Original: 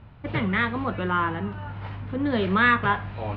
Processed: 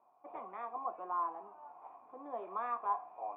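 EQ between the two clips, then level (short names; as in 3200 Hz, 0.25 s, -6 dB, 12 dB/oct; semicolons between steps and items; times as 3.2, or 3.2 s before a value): vocal tract filter a; ladder high-pass 280 Hz, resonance 40%; high shelf 2100 Hz +10.5 dB; +5.5 dB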